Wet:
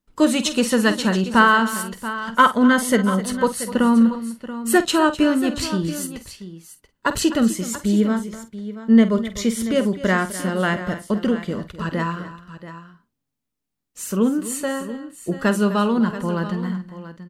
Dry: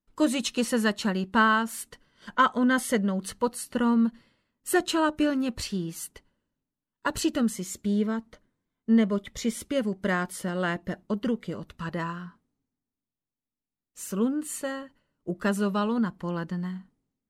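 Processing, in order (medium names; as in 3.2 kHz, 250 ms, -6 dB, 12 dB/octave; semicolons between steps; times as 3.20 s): doubling 48 ms -12.5 dB; multi-tap echo 254/682 ms -15/-13.5 dB; trim +7 dB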